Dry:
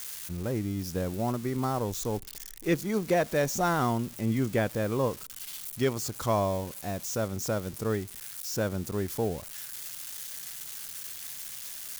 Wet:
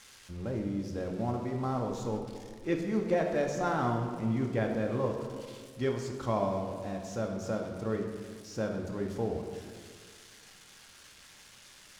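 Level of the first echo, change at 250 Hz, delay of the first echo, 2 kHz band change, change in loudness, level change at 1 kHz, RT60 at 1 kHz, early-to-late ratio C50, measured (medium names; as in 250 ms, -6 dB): no echo, -2.0 dB, no echo, -5.0 dB, -2.5 dB, -3.0 dB, 1.6 s, 4.5 dB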